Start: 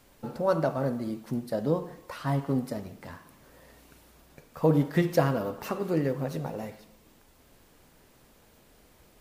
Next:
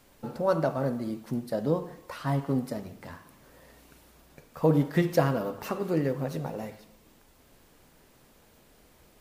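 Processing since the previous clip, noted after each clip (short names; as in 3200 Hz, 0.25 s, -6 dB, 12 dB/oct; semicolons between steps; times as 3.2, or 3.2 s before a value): notches 50/100 Hz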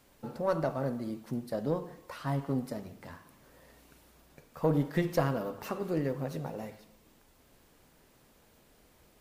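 one diode to ground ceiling -17 dBFS; gain -3.5 dB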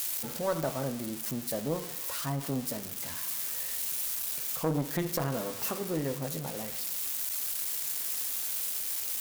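switching spikes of -26 dBFS; core saturation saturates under 480 Hz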